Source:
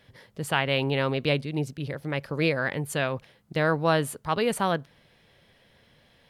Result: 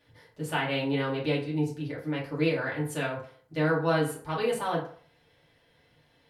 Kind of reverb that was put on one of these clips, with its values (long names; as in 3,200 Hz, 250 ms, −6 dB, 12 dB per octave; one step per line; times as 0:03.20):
feedback delay network reverb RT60 0.49 s, low-frequency decay 0.75×, high-frequency decay 0.6×, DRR −6 dB
level −10.5 dB